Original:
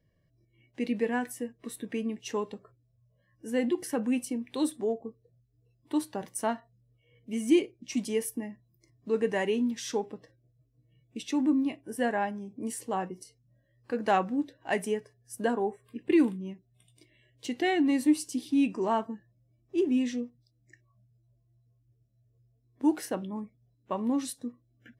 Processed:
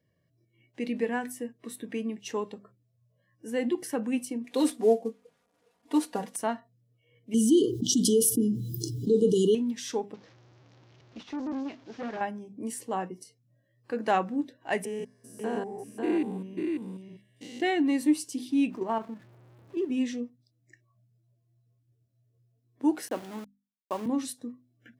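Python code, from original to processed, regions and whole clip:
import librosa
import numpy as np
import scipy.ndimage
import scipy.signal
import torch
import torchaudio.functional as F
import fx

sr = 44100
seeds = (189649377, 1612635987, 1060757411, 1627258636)

y = fx.chain(x, sr, fx.cvsd(bps=64000),
    fx.peak_eq(hz=580.0, db=5.5, octaves=1.1),
    fx.comb(ms=4.2, depth=0.94), at=(4.44, 6.36))
y = fx.chain(y, sr, fx.brickwall_bandstop(low_hz=490.0, high_hz=2900.0),
    fx.env_flatten(amount_pct=70), at=(7.34, 9.55))
y = fx.chain(y, sr, fx.delta_mod(bps=32000, step_db=-46.0),
    fx.tube_stage(drive_db=30.0, bias=0.7), at=(10.14, 12.21))
y = fx.chain(y, sr, fx.spec_steps(hold_ms=200),
    fx.echo_single(ms=543, db=-3.5), at=(14.85, 17.62))
y = fx.chain(y, sr, fx.zero_step(step_db=-43.5),
    fx.high_shelf(hz=4200.0, db=-10.0),
    fx.level_steps(step_db=9), at=(18.7, 19.9))
y = fx.chain(y, sr, fx.highpass(hz=210.0, slope=24),
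    fx.sample_gate(floor_db=-40.5), at=(23.08, 24.06))
y = scipy.signal.sosfilt(scipy.signal.butter(2, 95.0, 'highpass', fs=sr, output='sos'), y)
y = fx.hum_notches(y, sr, base_hz=50, count=5)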